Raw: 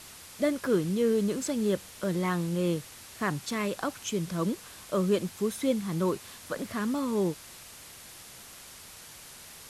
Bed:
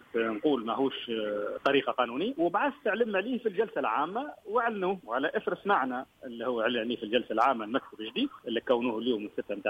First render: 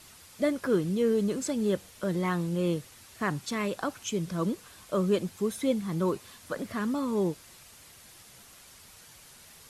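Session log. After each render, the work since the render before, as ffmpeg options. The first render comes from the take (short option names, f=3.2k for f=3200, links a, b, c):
-af "afftdn=nr=6:nf=-48"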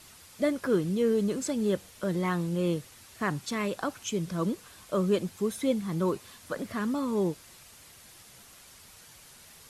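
-af anull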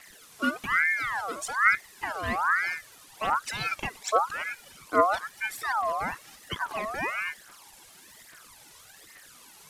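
-af "aphaser=in_gain=1:out_gain=1:delay=2.1:decay=0.73:speed=1.2:type=triangular,aeval=exprs='val(0)*sin(2*PI*1400*n/s+1400*0.4/1.1*sin(2*PI*1.1*n/s))':c=same"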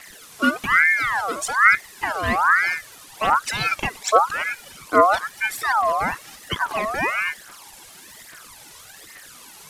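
-af "volume=8dB,alimiter=limit=-2dB:level=0:latency=1"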